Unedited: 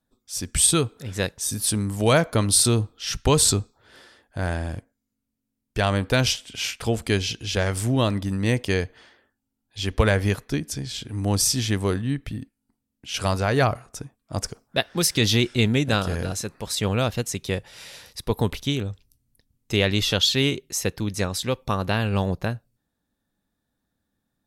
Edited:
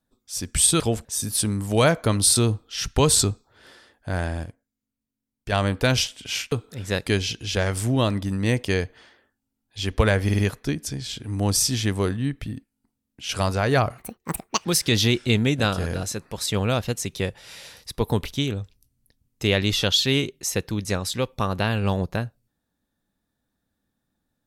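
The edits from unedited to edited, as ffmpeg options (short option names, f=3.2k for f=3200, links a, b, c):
-filter_complex "[0:a]asplit=12[a][b][c][d][e][f][g][h][i][j][k][l];[a]atrim=end=0.802[m];[b]atrim=start=6.808:end=7.062[n];[c]atrim=start=1.338:end=4.732[o];[d]atrim=start=4.728:end=5.812,asetpts=PTS-STARTPTS,volume=-5dB[p];[e]atrim=start=5.808:end=6.812[q];[f]atrim=start=0.798:end=1.342[r];[g]atrim=start=7.058:end=10.292[s];[h]atrim=start=10.238:end=10.292[t];[i]atrim=start=10.238:end=10.292[u];[j]atrim=start=10.238:end=13.834[v];[k]atrim=start=13.83:end=14.94,asetpts=PTS-STARTPTS,asetrate=73206,aresample=44100[w];[l]atrim=start=14.936[x];[m][n]acrossfade=d=0.004:c1=hsin:c2=hsin[y];[y][o]acrossfade=d=0.004:c1=hsin:c2=hsin[z];[z][p]acrossfade=d=0.004:c1=hsin:c2=hsin[aa];[aa][q]acrossfade=d=0.004:c1=hsin:c2=hsin[ab];[ab][r]acrossfade=d=0.004:c1=hsin:c2=hsin[ac];[ac][s]acrossfade=d=0.004:c1=hsin:c2=hsin[ad];[ad][t]acrossfade=d=0.004:c1=hsin:c2=hsin[ae];[ae][u]acrossfade=d=0.004:c1=hsin:c2=hsin[af];[af][v]acrossfade=d=0.004:c1=hsin:c2=hsin[ag];[ag][w]acrossfade=d=0.004:c1=hsin:c2=hsin[ah];[ah][x]acrossfade=d=0.004:c1=hsin:c2=hsin"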